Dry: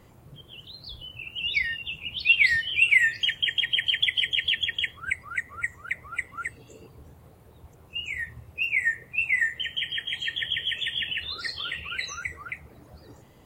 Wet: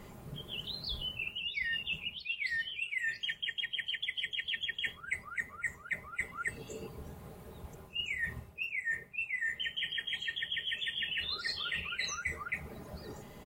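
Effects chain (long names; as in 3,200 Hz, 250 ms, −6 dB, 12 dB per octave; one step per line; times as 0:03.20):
comb filter 4.9 ms, depth 49%
reversed playback
downward compressor 20 to 1, threshold −36 dBFS, peak gain reduction 25 dB
reversed playback
level +3.5 dB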